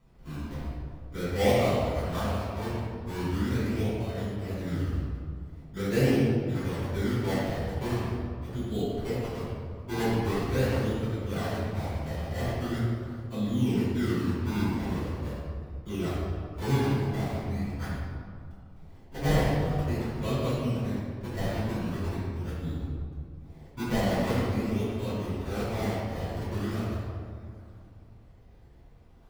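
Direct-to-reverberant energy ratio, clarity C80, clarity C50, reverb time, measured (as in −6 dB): −13.5 dB, −0.5 dB, −3.0 dB, 2.1 s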